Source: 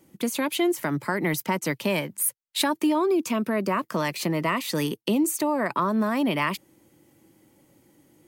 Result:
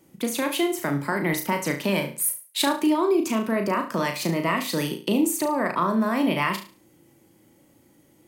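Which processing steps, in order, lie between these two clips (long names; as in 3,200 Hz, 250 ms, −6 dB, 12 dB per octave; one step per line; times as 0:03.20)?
flutter between parallel walls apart 6.1 metres, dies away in 0.36 s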